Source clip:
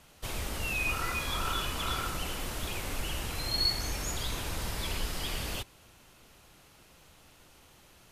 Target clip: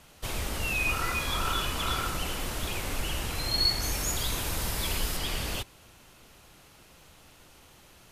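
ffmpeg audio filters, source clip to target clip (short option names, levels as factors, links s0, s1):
-filter_complex "[0:a]asettb=1/sr,asplit=3[s0][s1][s2];[s0]atrim=end=3.824[s3];[s1]atrim=start=3.82:end=5.17,asetpts=PTS-STARTPTS,afade=t=in:d=0.004:c=qsin,afade=t=out:st=1.346:d=0.004:c=qsin,highshelf=f=9000:g=8.5[s4];[s2]atrim=start=5.166[s5];[s3][s4]acrossfade=d=0.004:c1=hsin:c2=qsin[s6];[s6][s5]acrossfade=d=0.004:c1=qsin:c2=hsin,volume=1.41"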